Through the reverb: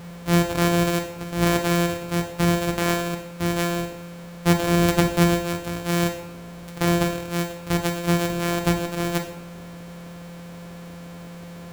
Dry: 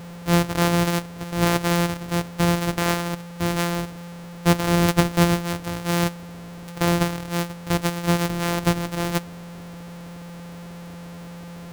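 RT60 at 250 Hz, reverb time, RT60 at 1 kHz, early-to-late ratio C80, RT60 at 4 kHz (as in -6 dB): 0.60 s, 0.70 s, 0.70 s, 12.0 dB, 0.65 s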